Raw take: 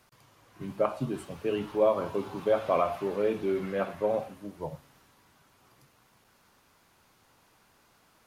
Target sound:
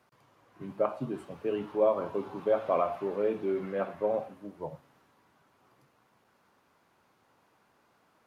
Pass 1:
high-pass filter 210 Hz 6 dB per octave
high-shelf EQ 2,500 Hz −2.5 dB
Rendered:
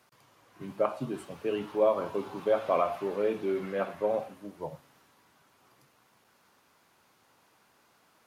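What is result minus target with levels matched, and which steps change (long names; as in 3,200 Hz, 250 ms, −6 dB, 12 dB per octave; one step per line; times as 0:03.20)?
4,000 Hz band +5.5 dB
change: high-shelf EQ 2,500 Hz −12.5 dB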